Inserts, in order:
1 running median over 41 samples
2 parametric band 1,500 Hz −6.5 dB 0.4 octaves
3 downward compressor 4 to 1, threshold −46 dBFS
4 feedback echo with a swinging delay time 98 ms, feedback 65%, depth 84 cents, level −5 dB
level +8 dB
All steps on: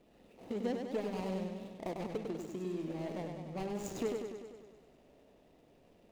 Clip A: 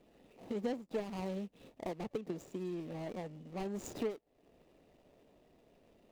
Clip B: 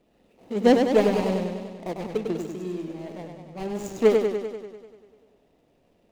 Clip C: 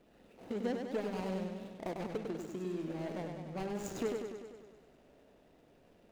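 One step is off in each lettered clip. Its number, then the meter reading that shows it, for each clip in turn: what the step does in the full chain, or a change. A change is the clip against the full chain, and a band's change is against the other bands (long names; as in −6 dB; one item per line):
4, change in integrated loudness −2.0 LU
3, average gain reduction 8.5 dB
2, 2 kHz band +2.5 dB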